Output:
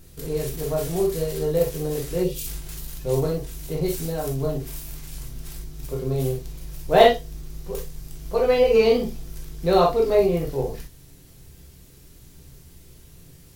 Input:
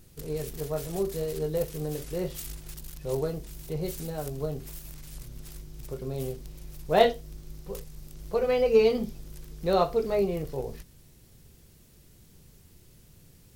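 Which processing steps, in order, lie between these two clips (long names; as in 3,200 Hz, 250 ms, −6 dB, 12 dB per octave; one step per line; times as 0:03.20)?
reverb whose tail is shaped and stops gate 80 ms flat, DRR −0.5 dB
gain on a spectral selection 0:02.23–0:02.47, 570–2,300 Hz −11 dB
level +3.5 dB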